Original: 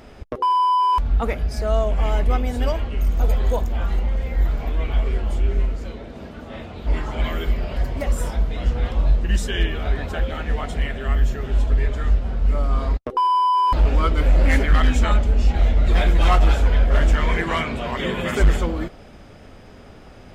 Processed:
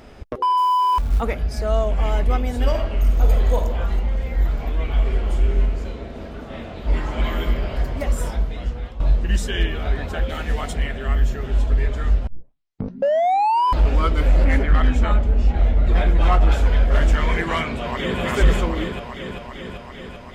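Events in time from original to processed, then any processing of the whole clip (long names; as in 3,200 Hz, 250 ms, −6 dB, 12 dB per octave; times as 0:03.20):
0:00.57–0:01.22: floating-point word with a short mantissa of 4 bits
0:02.57–0:03.65: thrown reverb, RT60 1.1 s, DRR 4 dB
0:04.89–0:07.44: thrown reverb, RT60 3 s, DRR 4 dB
0:08.31–0:09.00: fade out, to −13.5 dB
0:10.29–0:10.73: high-shelf EQ 4,900 Hz +11 dB
0:12.27: tape start 1.39 s
0:14.44–0:16.52: high-shelf EQ 3,100 Hz −11 dB
0:17.71–0:18.21: delay throw 390 ms, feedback 75%, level −2.5 dB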